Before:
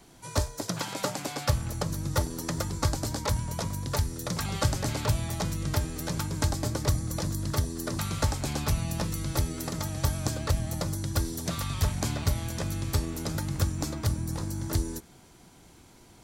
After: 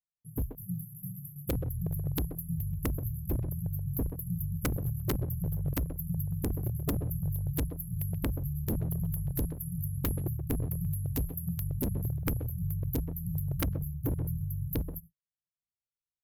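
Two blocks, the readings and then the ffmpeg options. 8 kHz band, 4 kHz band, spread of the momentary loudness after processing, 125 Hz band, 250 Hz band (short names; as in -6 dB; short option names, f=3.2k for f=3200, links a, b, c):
-11.0 dB, -16.0 dB, 3 LU, -2.5 dB, -2.0 dB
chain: -filter_complex "[0:a]afftfilt=real='re*(1-between(b*sr/4096,190,11000))':imag='im*(1-between(b*sr/4096,190,11000))':win_size=4096:overlap=0.75,aresample=32000,aresample=44100,aeval=exprs='0.0562*(abs(mod(val(0)/0.0562+3,4)-2)-1)':c=same,highshelf=f=12k:g=7.5,asplit=2[a][b];[b]adelay=130,highpass=300,lowpass=3.4k,asoftclip=type=hard:threshold=-29.5dB,volume=-7dB[c];[a][c]amix=inputs=2:normalize=0,adynamicequalizer=threshold=0.00224:dfrequency=530:dqfactor=0.85:tfrequency=530:tqfactor=0.85:attack=5:release=100:ratio=0.375:range=3.5:mode=boostabove:tftype=bell,agate=range=-52dB:threshold=-47dB:ratio=16:detection=peak,aeval=exprs='(mod(11.2*val(0)+1,2)-1)/11.2':c=same" -ar 48000 -c:a libmp3lame -b:a 192k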